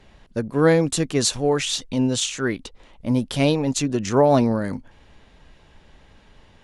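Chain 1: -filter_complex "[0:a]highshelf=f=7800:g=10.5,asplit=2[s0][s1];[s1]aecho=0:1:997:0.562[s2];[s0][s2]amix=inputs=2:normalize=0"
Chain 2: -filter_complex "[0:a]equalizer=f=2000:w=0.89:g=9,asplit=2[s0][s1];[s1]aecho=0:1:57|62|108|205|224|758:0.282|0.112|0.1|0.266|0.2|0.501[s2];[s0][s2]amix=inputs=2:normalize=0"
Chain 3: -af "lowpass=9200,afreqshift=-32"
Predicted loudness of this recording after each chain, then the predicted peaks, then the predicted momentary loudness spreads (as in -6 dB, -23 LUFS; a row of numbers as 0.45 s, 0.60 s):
-20.0 LUFS, -18.5 LUFS, -21.5 LUFS; -4.0 dBFS, -3.0 dBFS, -4.0 dBFS; 10 LU, 11 LU, 13 LU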